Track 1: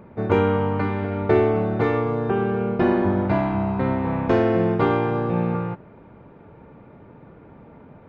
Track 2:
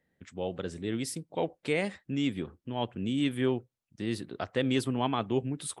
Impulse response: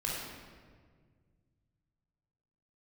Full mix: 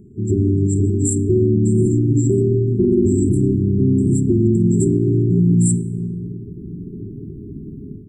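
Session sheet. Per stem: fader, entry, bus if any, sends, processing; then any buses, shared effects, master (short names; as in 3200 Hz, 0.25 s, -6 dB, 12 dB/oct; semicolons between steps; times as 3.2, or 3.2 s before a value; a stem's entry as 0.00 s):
+1.5 dB, 0.00 s, send -10.5 dB, dry
+1.5 dB, 0.00 s, send -23 dB, limiter -21.5 dBFS, peak gain reduction 6.5 dB; synth low-pass 7500 Hz, resonance Q 12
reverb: on, RT60 1.7 s, pre-delay 19 ms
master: FFT band-reject 420–7200 Hz; AGC gain up to 11 dB; limiter -7.5 dBFS, peak gain reduction 6 dB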